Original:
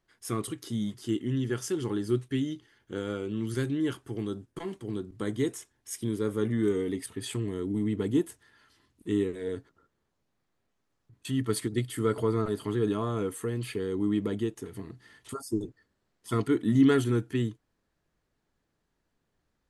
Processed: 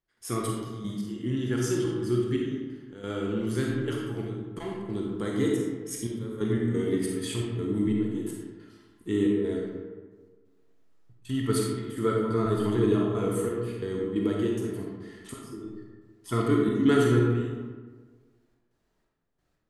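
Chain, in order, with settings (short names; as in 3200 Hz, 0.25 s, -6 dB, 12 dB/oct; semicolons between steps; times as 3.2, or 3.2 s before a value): step gate ".xx..x.xxxx" 89 bpm -12 dB; reverb RT60 1.5 s, pre-delay 5 ms, DRR -2 dB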